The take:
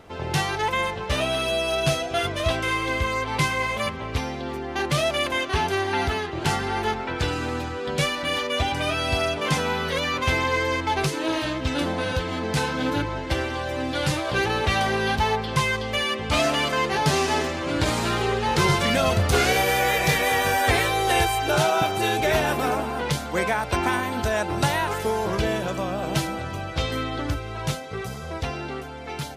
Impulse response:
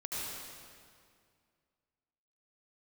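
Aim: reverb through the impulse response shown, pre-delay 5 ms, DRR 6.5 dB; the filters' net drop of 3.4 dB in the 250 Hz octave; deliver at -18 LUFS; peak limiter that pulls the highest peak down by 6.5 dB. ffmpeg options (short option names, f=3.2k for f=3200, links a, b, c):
-filter_complex "[0:a]equalizer=f=250:t=o:g=-5,alimiter=limit=-14dB:level=0:latency=1,asplit=2[a][b];[1:a]atrim=start_sample=2205,adelay=5[c];[b][c]afir=irnorm=-1:irlink=0,volume=-9.5dB[d];[a][d]amix=inputs=2:normalize=0,volume=6.5dB"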